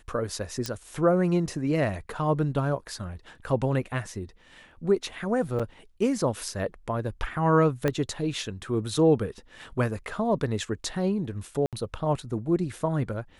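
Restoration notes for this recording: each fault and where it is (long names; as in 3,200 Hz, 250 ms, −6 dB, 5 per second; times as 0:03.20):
0:00.66: click −14 dBFS
0:05.59–0:05.60: drop-out 6.2 ms
0:07.88: click −12 dBFS
0:11.66–0:11.73: drop-out 67 ms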